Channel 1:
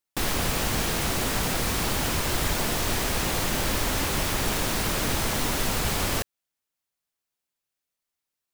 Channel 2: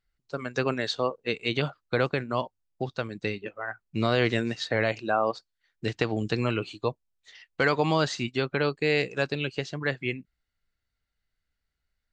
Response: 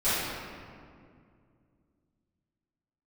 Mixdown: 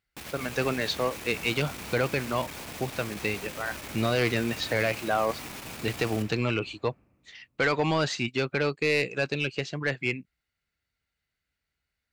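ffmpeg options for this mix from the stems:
-filter_complex "[0:a]aeval=exprs='(tanh(25.1*val(0)+0.7)-tanh(0.7))/25.1':c=same,volume=0.335,asplit=2[s0][s1];[s1]volume=0.126[s2];[1:a]volume=1.12[s3];[2:a]atrim=start_sample=2205[s4];[s2][s4]afir=irnorm=-1:irlink=0[s5];[s0][s3][s5]amix=inputs=3:normalize=0,highpass=64,equalizer=f=2400:w=3.2:g=5.5,asoftclip=type=tanh:threshold=0.15"

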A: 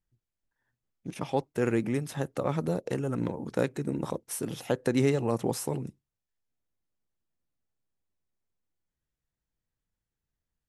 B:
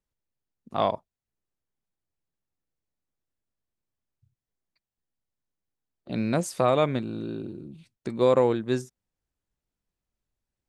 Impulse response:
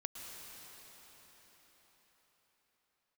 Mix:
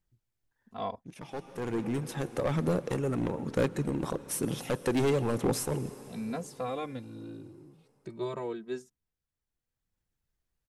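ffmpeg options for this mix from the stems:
-filter_complex "[0:a]asoftclip=type=hard:threshold=0.0596,volume=0.944,asplit=2[s0][s1];[s1]volume=0.376[s2];[1:a]asplit=2[s3][s4];[s4]adelay=2.7,afreqshift=0.36[s5];[s3][s5]amix=inputs=2:normalize=1,volume=0.355,asplit=2[s6][s7];[s7]apad=whole_len=471014[s8];[s0][s8]sidechaincompress=threshold=0.002:ratio=4:attack=16:release=942[s9];[2:a]atrim=start_sample=2205[s10];[s2][s10]afir=irnorm=-1:irlink=0[s11];[s9][s6][s11]amix=inputs=3:normalize=0,aphaser=in_gain=1:out_gain=1:delay=2.8:decay=0.22:speed=1.1:type=sinusoidal"

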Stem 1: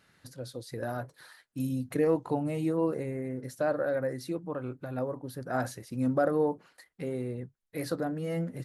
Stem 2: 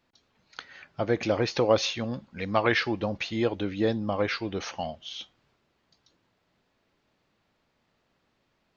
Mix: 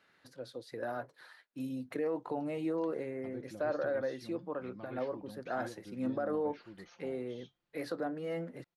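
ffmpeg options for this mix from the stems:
-filter_complex "[0:a]acrossover=split=250 4500:gain=0.2 1 0.251[s0][s1][s2];[s0][s1][s2]amix=inputs=3:normalize=0,alimiter=limit=0.0631:level=0:latency=1:release=38,volume=0.794[s3];[1:a]aecho=1:1:5.7:0.52,acrossover=split=320[s4][s5];[s5]acompressor=threshold=0.00794:ratio=2.5[s6];[s4][s6]amix=inputs=2:normalize=0,adelay=2250,volume=0.126[s7];[s3][s7]amix=inputs=2:normalize=0"

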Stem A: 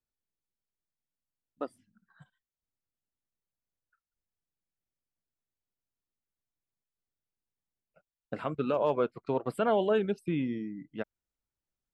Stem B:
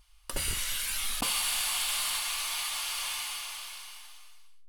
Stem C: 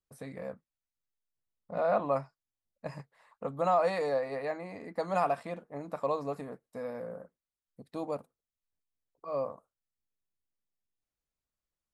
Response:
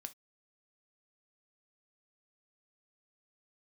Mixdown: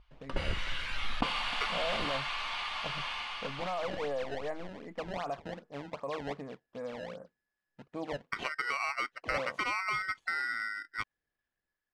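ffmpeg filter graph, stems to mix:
-filter_complex "[0:a]acompressor=threshold=0.0224:ratio=5,aeval=exprs='val(0)*sgn(sin(2*PI*1700*n/s))':c=same,volume=1[s0];[1:a]aemphasis=mode=reproduction:type=75fm,volume=1.06,asplit=2[s1][s2];[s2]volume=0.106[s3];[2:a]alimiter=level_in=1.33:limit=0.0631:level=0:latency=1:release=41,volume=0.75,acrusher=samples=22:mix=1:aa=0.000001:lfo=1:lforange=35.2:lforate=2.6,volume=0.596[s4];[s3]aecho=0:1:308|616|924|1232|1540|1848:1|0.46|0.212|0.0973|0.0448|0.0206[s5];[s0][s1][s4][s5]amix=inputs=4:normalize=0,lowpass=3400,dynaudnorm=f=140:g=7:m=1.41"

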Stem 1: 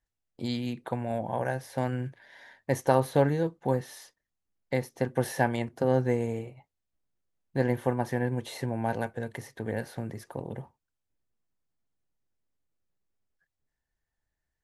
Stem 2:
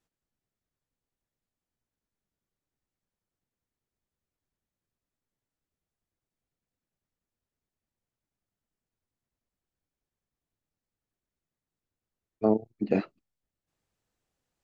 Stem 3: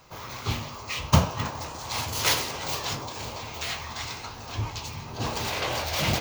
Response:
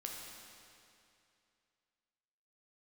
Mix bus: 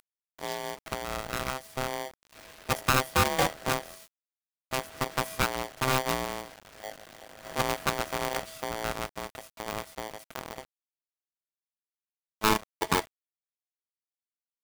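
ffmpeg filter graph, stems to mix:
-filter_complex "[0:a]highshelf=f=8800:g=6,volume=0.794[s0];[1:a]volume=0.891[s1];[2:a]lowpass=f=2200:w=0.5412,lowpass=f=2200:w=1.3066,flanger=delay=18.5:depth=7.4:speed=0.41,adelay=2250,volume=0.422,asplit=3[s2][s3][s4];[s2]atrim=end=3.96,asetpts=PTS-STARTPTS,afade=t=out:st=3.956:d=0.004:c=hsin[s5];[s3]atrim=start=3.96:end=4.71,asetpts=PTS-STARTPTS,volume=0[s6];[s4]atrim=start=4.71,asetpts=PTS-STARTPTS,afade=t=in:d=0.004:c=hsin[s7];[s5][s6][s7]concat=n=3:v=0:a=1[s8];[s0][s1][s8]amix=inputs=3:normalize=0,acompressor=mode=upward:threshold=0.00631:ratio=2.5,acrusher=bits=5:dc=4:mix=0:aa=0.000001,aeval=exprs='val(0)*sgn(sin(2*PI*650*n/s))':c=same"

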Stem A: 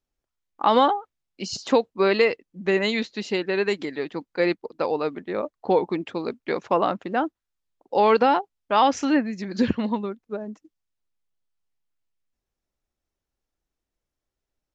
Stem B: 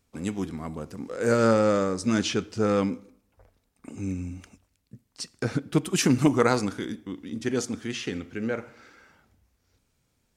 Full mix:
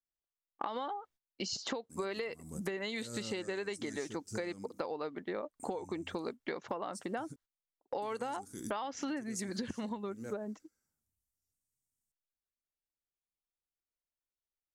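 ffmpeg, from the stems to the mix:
-filter_complex "[0:a]bandreject=f=2500:w=11,agate=range=0.112:threshold=0.00355:ratio=16:detection=peak,acompressor=threshold=0.0708:ratio=6,volume=1.19,asplit=2[s0][s1];[1:a]firequalizer=gain_entry='entry(140,0);entry(550,-11);entry(3000,-16);entry(5400,4);entry(8100,14)':delay=0.05:min_phase=1,agate=range=0.1:threshold=0.002:ratio=16:detection=peak,adelay=1750,volume=0.75,asplit=3[s2][s3][s4];[s2]atrim=end=7.36,asetpts=PTS-STARTPTS,afade=t=out:st=7.356:d=0.004:c=hsin[s5];[s3]atrim=start=7.36:end=8.02,asetpts=PTS-STARTPTS,volume=0[s6];[s4]atrim=start=8.02,asetpts=PTS-STARTPTS,afade=t=in:d=0.004:c=hsin[s7];[s5][s6][s7]concat=n=3:v=0:a=1[s8];[s1]apad=whole_len=538830[s9];[s8][s9]sidechaincompress=threshold=0.0126:ratio=4:attack=40:release=255[s10];[s0][s10]amix=inputs=2:normalize=0,lowshelf=f=360:g=-4,acompressor=threshold=0.0158:ratio=5"

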